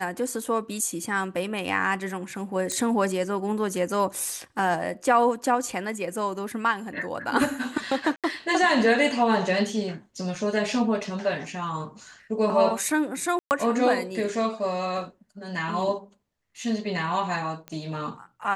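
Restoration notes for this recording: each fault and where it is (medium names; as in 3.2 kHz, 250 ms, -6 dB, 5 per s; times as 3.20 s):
2.72 s: pop -15 dBFS
8.16–8.24 s: dropout 77 ms
10.35 s: dropout 3.4 ms
13.39–13.51 s: dropout 119 ms
17.68 s: pop -21 dBFS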